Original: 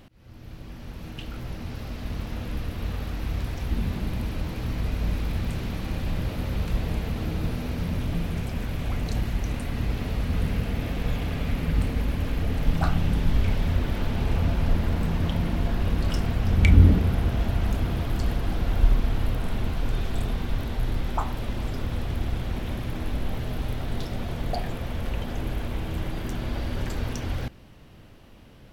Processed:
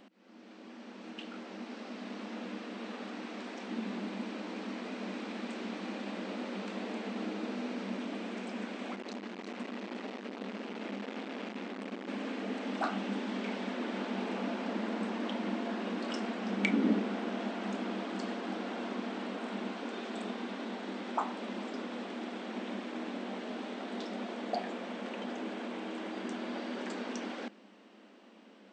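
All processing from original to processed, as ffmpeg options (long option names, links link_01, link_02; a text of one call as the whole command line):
ffmpeg -i in.wav -filter_complex "[0:a]asettb=1/sr,asplit=3[link_01][link_02][link_03];[link_01]atrim=end=8.954[link_04];[link_02]atrim=start=8.95:end=12.08,asetpts=PTS-STARTPTS,afade=type=in:duration=0.004:curve=qsin,afade=type=out:start_time=3.126:duration=0.004:curve=qsin,lowpass=6400,aecho=1:1:355:0.501,atrim=end_sample=138033,asoftclip=type=hard:threshold=-29.5dB[link_05];[link_03]atrim=start=12.076[link_06];[link_04][link_05]acrossfade=duration=0.004:curve1=hsin:curve2=qsin[link_07];[link_07][link_06]acrossfade=duration=0.004:curve1=qsin:curve2=hsin,afftfilt=real='re*between(b*sr/4096,190,8700)':imag='im*between(b*sr/4096,190,8700)':win_size=4096:overlap=0.75,highshelf=frequency=4300:gain=-7,volume=-2.5dB" out.wav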